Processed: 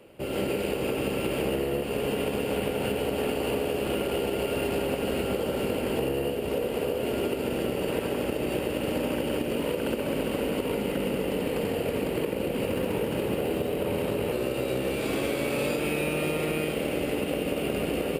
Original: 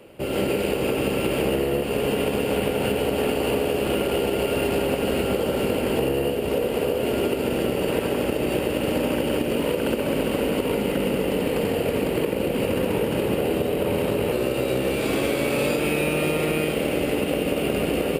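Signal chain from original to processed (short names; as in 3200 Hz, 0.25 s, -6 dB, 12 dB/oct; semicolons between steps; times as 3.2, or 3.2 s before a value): 12.64–13.78 added noise blue -60 dBFS; gain -5 dB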